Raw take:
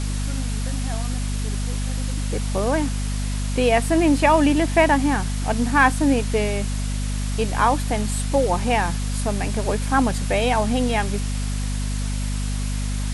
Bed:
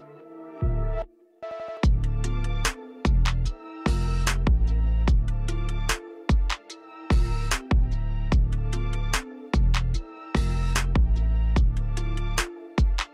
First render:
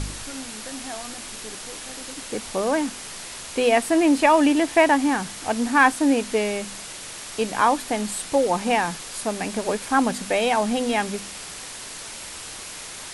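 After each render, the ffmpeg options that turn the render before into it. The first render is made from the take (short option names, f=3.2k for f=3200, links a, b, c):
-af "bandreject=f=50:t=h:w=4,bandreject=f=100:t=h:w=4,bandreject=f=150:t=h:w=4,bandreject=f=200:t=h:w=4,bandreject=f=250:t=h:w=4"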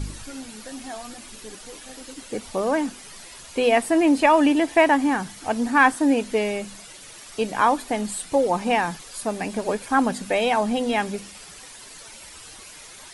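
-af "afftdn=nr=10:nf=-37"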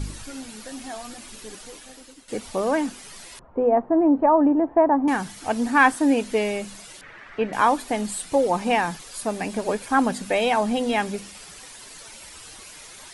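-filter_complex "[0:a]asettb=1/sr,asplit=3[a][b][c];[a]atrim=end=3.394[d];[b]atrim=start=3.39:end=5.08,asetpts=PTS-STARTPTS,afade=t=in:d=0.004:c=qsin,afade=t=out:st=1.686:d=0.004:c=qsin,lowpass=f=1.1k:w=0.5412,lowpass=f=1.1k:w=1.3066[e];[c]atrim=start=5.076[f];[d][e]acrossfade=d=0.004:c1=hsin:c2=qsin[g];[g][f]acrossfade=d=0.004:c1=qsin:c2=hsin,asettb=1/sr,asplit=3[h][i][j];[h]atrim=end=7.014[k];[i]atrim=start=7.01:end=7.53,asetpts=PTS-STARTPTS,afade=t=in:d=0.004:c=qsin,afade=t=out:st=0.516:d=0.004:c=qsin,lowpass=f=1.8k:t=q:w=2.8[l];[j]atrim=start=7.526[m];[k][l]acrossfade=d=0.004:c1=hsin:c2=qsin[n];[n][m]acrossfade=d=0.004:c1=qsin:c2=hsin,asplit=2[o][p];[o]atrim=end=2.28,asetpts=PTS-STARTPTS,afade=t=out:st=1.6:d=0.68:silence=0.211349[q];[p]atrim=start=2.28,asetpts=PTS-STARTPTS,afade=t=in:d=0.004:c=hsin:silence=0.211349[r];[q][r]concat=n=2:v=0:a=1"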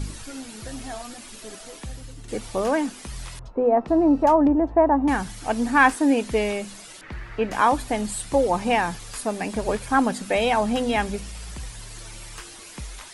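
-filter_complex "[1:a]volume=-15.5dB[a];[0:a][a]amix=inputs=2:normalize=0"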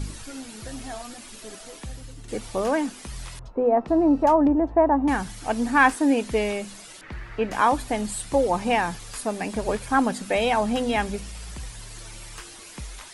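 -af "volume=-1dB"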